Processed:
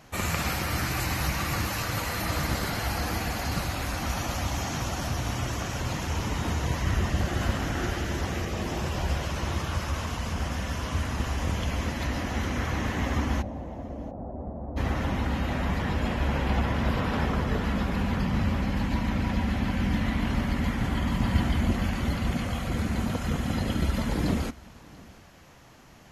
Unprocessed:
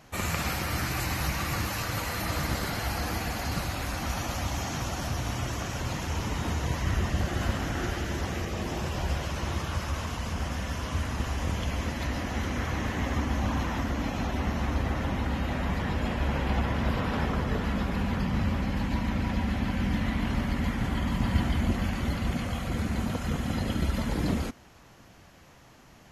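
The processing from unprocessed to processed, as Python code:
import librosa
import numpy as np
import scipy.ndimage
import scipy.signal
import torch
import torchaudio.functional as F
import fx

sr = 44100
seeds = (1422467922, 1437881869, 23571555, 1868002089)

p1 = fx.ladder_lowpass(x, sr, hz=740.0, resonance_pct=50, at=(13.41, 14.76), fade=0.02)
p2 = p1 + fx.echo_single(p1, sr, ms=688, db=-23.5, dry=0)
y = F.gain(torch.from_numpy(p2), 1.5).numpy()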